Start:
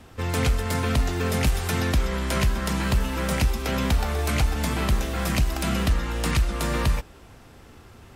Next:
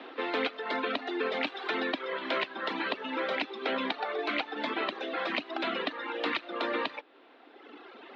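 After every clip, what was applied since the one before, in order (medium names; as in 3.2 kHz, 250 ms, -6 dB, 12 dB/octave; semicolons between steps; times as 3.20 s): Chebyshev band-pass 280–3900 Hz, order 4; reverb removal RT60 1.7 s; compression 1.5:1, threshold -50 dBFS, peak gain reduction 9 dB; trim +8 dB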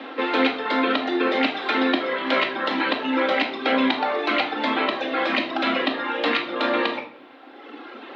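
simulated room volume 890 m³, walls furnished, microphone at 2.2 m; trim +7 dB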